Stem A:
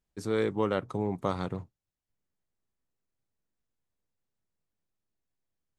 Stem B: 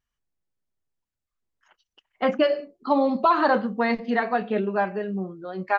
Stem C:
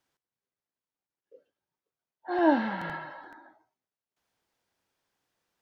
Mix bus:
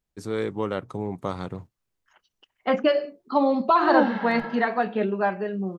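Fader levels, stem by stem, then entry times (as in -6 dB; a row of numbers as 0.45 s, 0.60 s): +0.5 dB, 0.0 dB, +1.0 dB; 0.00 s, 0.45 s, 1.50 s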